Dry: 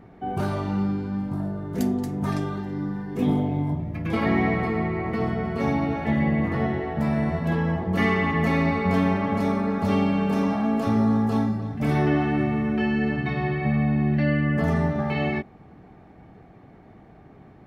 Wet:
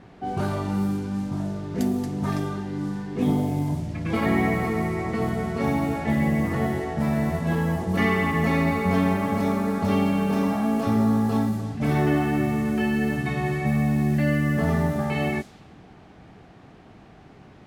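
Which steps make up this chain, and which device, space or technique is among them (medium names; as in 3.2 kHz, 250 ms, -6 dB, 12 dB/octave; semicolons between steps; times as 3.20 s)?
cassette deck with a dynamic noise filter (white noise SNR 25 dB; level-controlled noise filter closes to 1.8 kHz, open at -20 dBFS)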